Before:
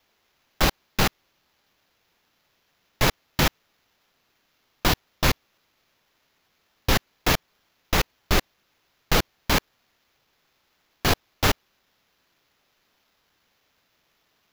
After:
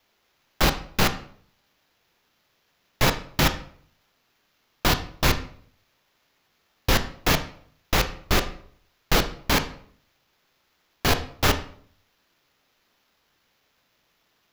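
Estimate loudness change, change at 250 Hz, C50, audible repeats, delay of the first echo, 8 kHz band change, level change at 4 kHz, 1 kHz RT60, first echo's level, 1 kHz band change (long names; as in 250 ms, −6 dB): +0.5 dB, +0.5 dB, 12.5 dB, no echo audible, no echo audible, 0.0 dB, +0.5 dB, 0.55 s, no echo audible, +0.5 dB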